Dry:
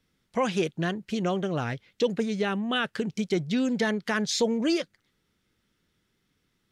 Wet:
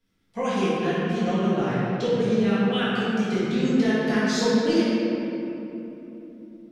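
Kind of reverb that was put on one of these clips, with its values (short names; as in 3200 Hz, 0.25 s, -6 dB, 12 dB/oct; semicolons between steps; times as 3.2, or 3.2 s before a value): shoebox room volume 180 m³, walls hard, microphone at 1.7 m; gain -8.5 dB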